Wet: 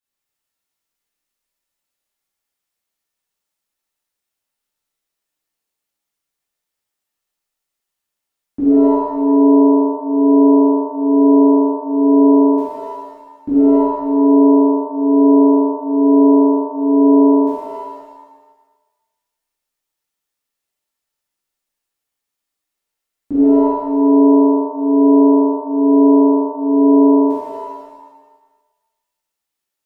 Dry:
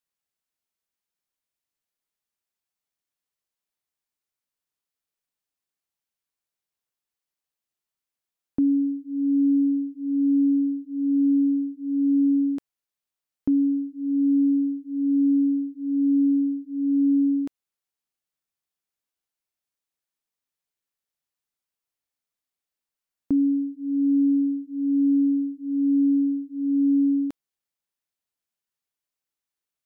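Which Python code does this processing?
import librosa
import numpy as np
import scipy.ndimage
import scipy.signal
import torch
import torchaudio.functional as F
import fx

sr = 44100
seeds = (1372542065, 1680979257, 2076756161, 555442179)

y = fx.rev_shimmer(x, sr, seeds[0], rt60_s=1.2, semitones=7, shimmer_db=-2, drr_db=-11.0)
y = y * librosa.db_to_amplitude(-5.0)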